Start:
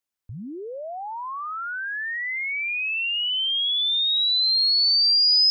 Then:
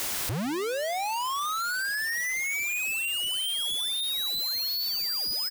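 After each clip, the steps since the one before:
sign of each sample alone
single-tap delay 156 ms −21.5 dB
level −6 dB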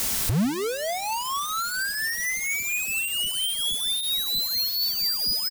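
bass and treble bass +11 dB, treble +5 dB
comb filter 4.5 ms, depth 35%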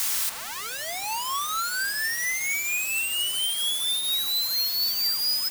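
high-pass filter 870 Hz 24 dB per octave
background noise white −40 dBFS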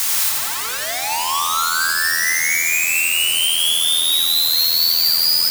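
feedback echo at a low word length 85 ms, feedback 80%, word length 8 bits, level −3.5 dB
level +6.5 dB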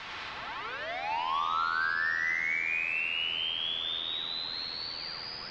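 Bessel low-pass filter 2,300 Hz, order 6
level −8 dB

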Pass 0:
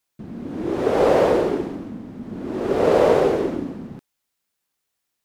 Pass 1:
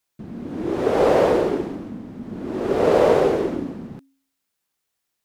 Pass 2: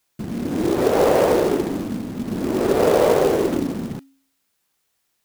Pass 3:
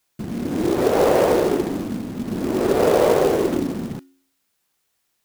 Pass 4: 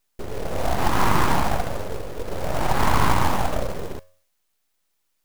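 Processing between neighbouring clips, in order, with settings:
hum removal 271.4 Hz, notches 2
downward compressor 2 to 1, threshold −25 dBFS, peak gain reduction 8 dB; floating-point word with a short mantissa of 2 bits; level +7 dB
tuned comb filter 360 Hz, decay 0.57 s, mix 40%; level +4 dB
full-wave rectification

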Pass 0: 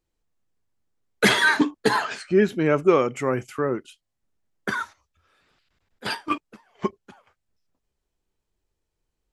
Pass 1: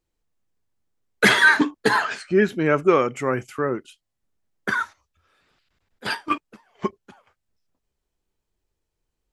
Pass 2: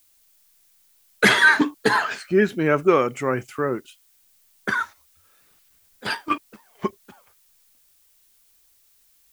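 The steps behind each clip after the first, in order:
dynamic equaliser 1,600 Hz, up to +5 dB, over −33 dBFS, Q 1.4
background noise blue −60 dBFS

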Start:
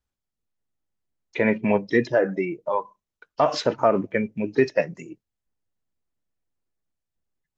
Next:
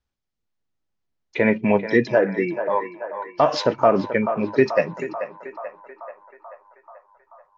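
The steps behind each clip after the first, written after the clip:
low-pass filter 6,300 Hz 24 dB per octave
feedback echo with a band-pass in the loop 435 ms, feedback 72%, band-pass 1,000 Hz, level −8 dB
level +2.5 dB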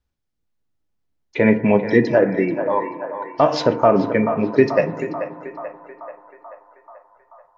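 low-shelf EQ 430 Hz +5.5 dB
feedback delay network reverb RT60 1.4 s, low-frequency decay 1.25×, high-frequency decay 0.25×, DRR 10.5 dB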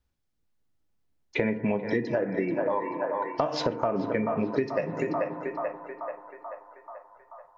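downward compressor 12 to 1, threshold −23 dBFS, peak gain reduction 15.5 dB

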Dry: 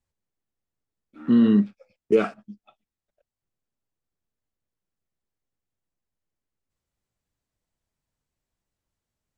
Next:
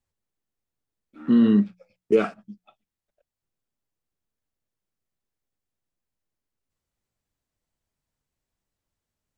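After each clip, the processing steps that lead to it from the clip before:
mains-hum notches 60/120/180 Hz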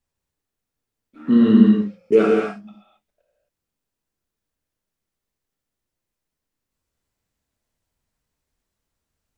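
reverb whose tail is shaped and stops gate 290 ms flat, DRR −2.5 dB
level +1 dB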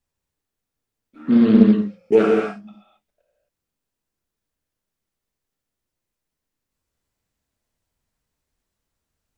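highs frequency-modulated by the lows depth 0.37 ms

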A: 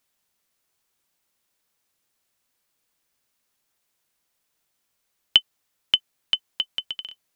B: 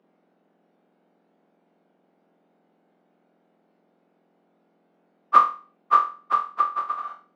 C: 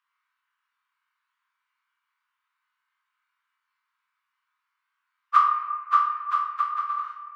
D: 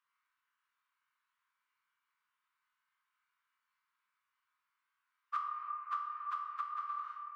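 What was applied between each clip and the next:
frequency axis turned over on the octave scale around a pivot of 1,900 Hz; three-way crossover with the lows and the highs turned down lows −22 dB, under 310 Hz, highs −15 dB, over 4,600 Hz; flutter between parallel walls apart 4.1 metres, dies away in 0.37 s; level +5.5 dB
Butterworth high-pass 1,000 Hz 96 dB per octave; on a send at −3.5 dB: convolution reverb RT60 1.7 s, pre-delay 4 ms; on the sum: level −2.5 dB
downward compressor 4 to 1, threshold −32 dBFS, peak gain reduction 16 dB; level −5.5 dB

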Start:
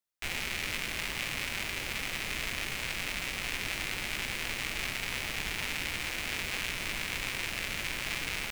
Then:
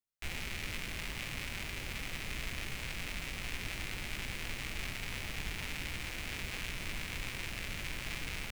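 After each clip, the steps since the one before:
low-shelf EQ 210 Hz +10 dB
level −7 dB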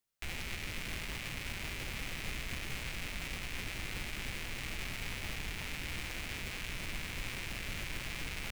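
brickwall limiter −33.5 dBFS, peak gain reduction 11 dB
level +6.5 dB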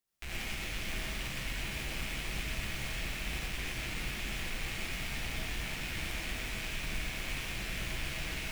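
reverb whose tail is shaped and stops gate 140 ms rising, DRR −3.5 dB
level −2.5 dB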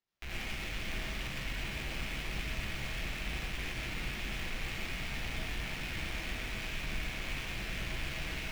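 running median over 5 samples

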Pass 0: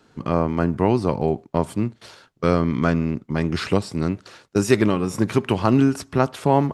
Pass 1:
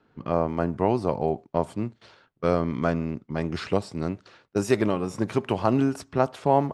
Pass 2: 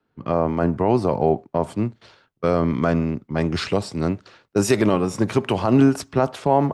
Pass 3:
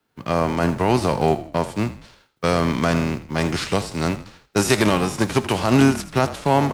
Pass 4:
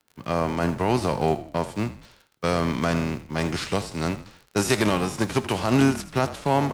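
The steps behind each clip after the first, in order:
low-pass that shuts in the quiet parts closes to 2,700 Hz, open at −16 dBFS; dynamic equaliser 660 Hz, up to +7 dB, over −33 dBFS, Q 1.2; level −7 dB
brickwall limiter −13.5 dBFS, peak gain reduction 7.5 dB; multiband upward and downward expander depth 40%; level +7.5 dB
spectral envelope flattened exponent 0.6; echo with shifted repeats 81 ms, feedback 38%, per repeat −38 Hz, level −14.5 dB
surface crackle 43 per second −34 dBFS; level −4 dB

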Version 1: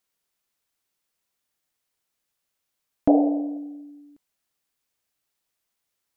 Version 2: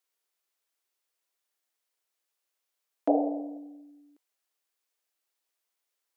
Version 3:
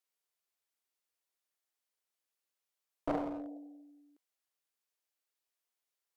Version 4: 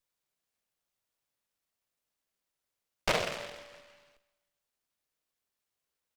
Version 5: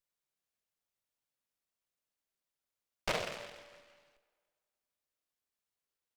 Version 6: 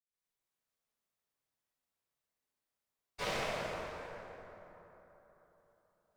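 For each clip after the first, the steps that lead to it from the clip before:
high-pass filter 330 Hz 24 dB per octave; level −3.5 dB
asymmetric clip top −34 dBFS; level −6 dB
lower of the sound and its delayed copy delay 1.7 ms; repeating echo 157 ms, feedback 60%, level −24 dB; short delay modulated by noise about 1,800 Hz, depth 0.24 ms; level +4.5 dB
tape delay 98 ms, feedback 74%, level −21.5 dB, low-pass 5,600 Hz; level −5.5 dB
convolution reverb RT60 3.7 s, pre-delay 107 ms; level +15.5 dB

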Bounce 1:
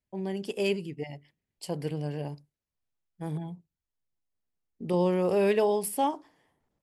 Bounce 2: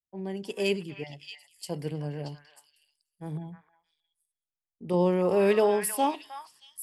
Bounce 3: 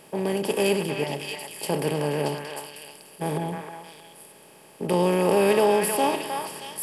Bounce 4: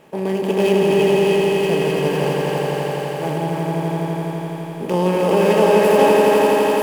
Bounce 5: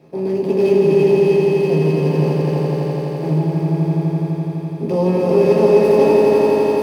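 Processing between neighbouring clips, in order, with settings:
echo through a band-pass that steps 314 ms, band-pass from 1,500 Hz, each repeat 1.4 octaves, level −1 dB; multiband upward and downward expander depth 40%
compressor on every frequency bin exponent 0.4
running median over 9 samples; on a send: echo that builds up and dies away 84 ms, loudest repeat 5, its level −5 dB; on the sum: level +3 dB
convolution reverb, pre-delay 3 ms, DRR −1.5 dB; level −12 dB

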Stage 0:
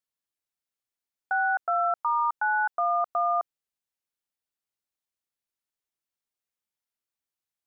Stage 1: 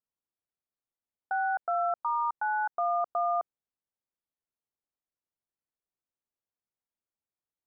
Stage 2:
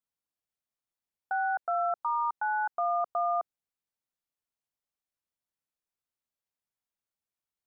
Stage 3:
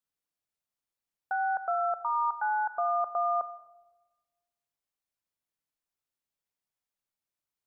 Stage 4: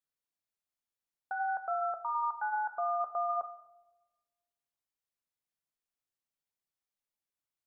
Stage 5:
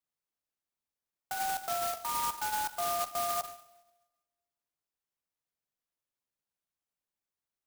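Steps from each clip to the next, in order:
Bessel low-pass filter 930 Hz, order 2
parametric band 360 Hz −3.5 dB
rectangular room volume 720 cubic metres, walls mixed, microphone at 0.35 metres
flanger 0.52 Hz, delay 7.9 ms, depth 5.4 ms, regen −72%
converter with an unsteady clock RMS 0.093 ms

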